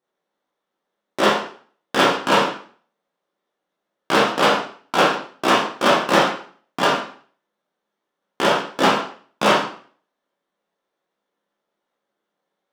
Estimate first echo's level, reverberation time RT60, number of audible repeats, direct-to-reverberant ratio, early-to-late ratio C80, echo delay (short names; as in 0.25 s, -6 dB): none, 0.50 s, none, -5.5 dB, 10.0 dB, none